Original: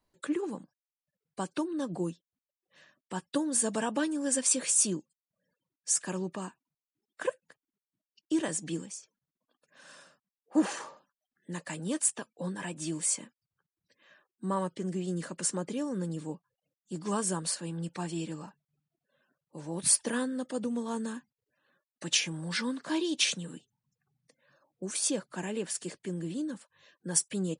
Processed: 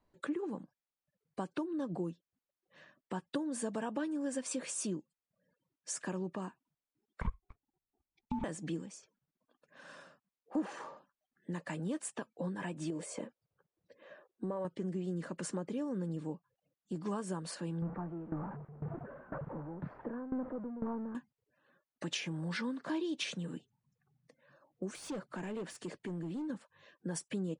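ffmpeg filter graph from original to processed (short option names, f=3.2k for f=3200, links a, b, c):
-filter_complex "[0:a]asettb=1/sr,asplit=3[a][b][c];[a]atrim=end=7.214[d];[b]atrim=start=7.21:end=8.44,asetpts=PTS-STARTPTS,afade=t=in:d=0.004:c=qsin,afade=t=out:st=1.226:d=0.004:c=qsin,acompressor=threshold=-30dB:ratio=6:attack=3.2:release=140:knee=1:detection=peak,aeval=exprs='val(0)*sin(2*PI*560*n/s)':c=same,aemphasis=mode=reproduction:type=riaa[e];[c]atrim=start=8.436[f];[d][e]acrossfade=d=0.004:c1=hsin:c2=qsin[g];[g][f]acrossfade=d=0.004:c1=qsin:c2=hsin,asettb=1/sr,asplit=3[h][i][j];[h]atrim=end=12.904[k];[i]atrim=start=12.9:end=14.65,asetpts=PTS-STARTPTS,afade=t=in:d=0.004:c=qsin,afade=t=out:st=1.746:d=0.004:c=qsin,equalizer=f=520:w=1.3:g=13,acompressor=threshold=-33dB:ratio=3:attack=3.2:release=140:knee=1:detection=peak[l];[j]atrim=start=14.646[m];[k][l]acrossfade=d=0.004:c1=hsin:c2=qsin[n];[n][m]acrossfade=d=0.004:c1=qsin:c2=hsin,asettb=1/sr,asplit=3[o][p][q];[o]atrim=end=17.824[r];[p]atrim=start=17.82:end=21.15,asetpts=PTS-STARTPTS,afade=t=in:d=0.004:c=qsin,afade=t=out:st=3.326:d=0.004:c=qsin,aeval=exprs='val(0)+0.5*0.0282*sgn(val(0))':c=same,lowpass=f=1.4k:w=0.5412,lowpass=f=1.4k:w=1.3066,aeval=exprs='val(0)*pow(10,-20*if(lt(mod(2*n/s,1),2*abs(2)/1000),1-mod(2*n/s,1)/(2*abs(2)/1000),(mod(2*n/s,1)-2*abs(2)/1000)/(1-2*abs(2)/1000))/20)':c=same[s];[q]atrim=start=21.146[t];[r][s]acrossfade=d=0.004:c1=hsin:c2=qsin[u];[u][t]acrossfade=d=0.004:c1=qsin:c2=hsin,asettb=1/sr,asplit=3[v][w][x];[v]atrim=end=24.954[y];[w]atrim=start=24.95:end=26.5,asetpts=PTS-STARTPTS,afade=t=in:d=0.004:c=qsin,afade=t=out:st=1.546:d=0.004:c=qsin,asoftclip=type=hard:threshold=-32dB,acompressor=threshold=-39dB:ratio=4:attack=3.2:release=140:knee=1:detection=peak[z];[x]atrim=start=26.496[aa];[y][z]acrossfade=d=0.004:c1=hsin:c2=qsin[ab];[ab][aa]acrossfade=d=0.004:c1=qsin:c2=hsin,lowpass=f=1.6k:p=1,acompressor=threshold=-41dB:ratio=2.5,volume=3.5dB"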